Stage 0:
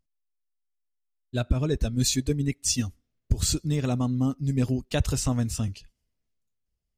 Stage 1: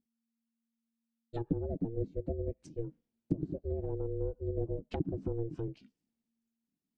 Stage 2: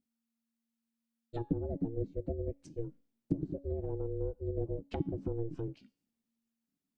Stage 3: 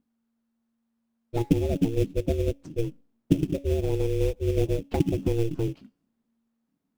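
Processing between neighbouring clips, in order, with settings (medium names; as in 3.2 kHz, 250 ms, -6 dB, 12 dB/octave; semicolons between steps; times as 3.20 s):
low-pass that closes with the level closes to 340 Hz, closed at -21.5 dBFS; ring modulator 230 Hz; trim -6 dB
feedback comb 280 Hz, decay 0.5 s, harmonics all, mix 50%; trim +5 dB
in parallel at -4 dB: sample-rate reducer 3 kHz, jitter 20%; on the sum: tape noise reduction on one side only decoder only; trim +7 dB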